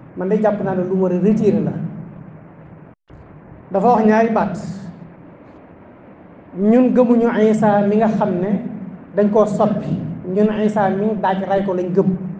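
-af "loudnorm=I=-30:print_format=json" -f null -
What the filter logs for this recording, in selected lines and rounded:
"input_i" : "-17.1",
"input_tp" : "-2.6",
"input_lra" : "3.6",
"input_thresh" : "-28.3",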